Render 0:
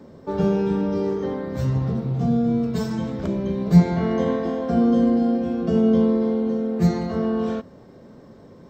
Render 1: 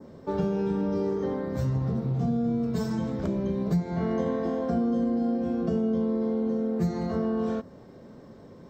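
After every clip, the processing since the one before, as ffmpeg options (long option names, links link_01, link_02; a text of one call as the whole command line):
ffmpeg -i in.wav -af "adynamicequalizer=threshold=0.00355:dfrequency=2900:dqfactor=1.2:tfrequency=2900:tqfactor=1.2:attack=5:release=100:ratio=0.375:range=2.5:mode=cutabove:tftype=bell,acompressor=threshold=-21dB:ratio=6,volume=-2dB" out.wav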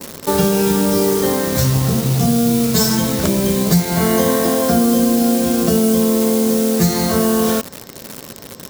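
ffmpeg -i in.wav -filter_complex "[0:a]asplit=2[link_01][link_02];[link_02]acrusher=bits=6:mix=0:aa=0.000001,volume=-5.5dB[link_03];[link_01][link_03]amix=inputs=2:normalize=0,crystalizer=i=8.5:c=0,volume=7dB" out.wav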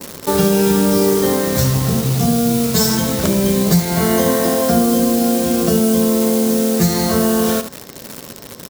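ffmpeg -i in.wav -af "aecho=1:1:71:0.251" out.wav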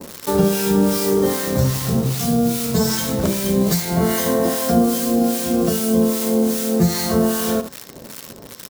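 ffmpeg -i in.wav -filter_complex "[0:a]acrossover=split=1100[link_01][link_02];[link_01]aeval=exprs='val(0)*(1-0.7/2+0.7/2*cos(2*PI*2.5*n/s))':channel_layout=same[link_03];[link_02]aeval=exprs='val(0)*(1-0.7/2-0.7/2*cos(2*PI*2.5*n/s))':channel_layout=same[link_04];[link_03][link_04]amix=inputs=2:normalize=0" out.wav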